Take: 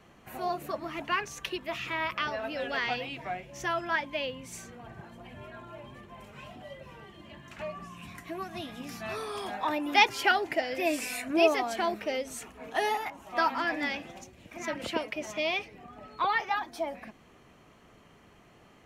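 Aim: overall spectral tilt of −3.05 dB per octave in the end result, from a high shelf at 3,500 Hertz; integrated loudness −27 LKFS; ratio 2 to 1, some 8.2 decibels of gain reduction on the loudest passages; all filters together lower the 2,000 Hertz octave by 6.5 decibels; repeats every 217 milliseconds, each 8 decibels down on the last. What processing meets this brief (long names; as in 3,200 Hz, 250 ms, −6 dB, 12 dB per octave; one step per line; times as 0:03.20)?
parametric band 2,000 Hz −6 dB
high-shelf EQ 3,500 Hz −8 dB
downward compressor 2 to 1, threshold −34 dBFS
repeating echo 217 ms, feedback 40%, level −8 dB
level +10.5 dB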